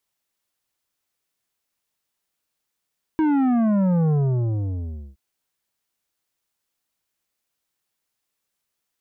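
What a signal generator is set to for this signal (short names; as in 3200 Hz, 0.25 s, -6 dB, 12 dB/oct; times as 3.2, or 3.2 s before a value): sub drop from 320 Hz, over 1.97 s, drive 10 dB, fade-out 1.05 s, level -17.5 dB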